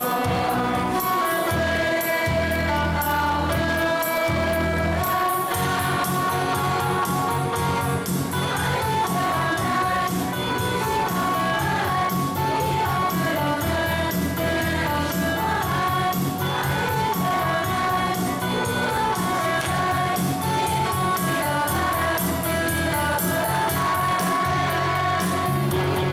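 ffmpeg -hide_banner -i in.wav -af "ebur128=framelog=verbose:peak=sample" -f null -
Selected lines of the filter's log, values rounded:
Integrated loudness:
  I:         -22.4 LUFS
  Threshold: -32.4 LUFS
Loudness range:
  LRA:         1.0 LU
  Threshold: -42.4 LUFS
  LRA low:   -22.9 LUFS
  LRA high:  -21.9 LUFS
Sample peak:
  Peak:      -15.3 dBFS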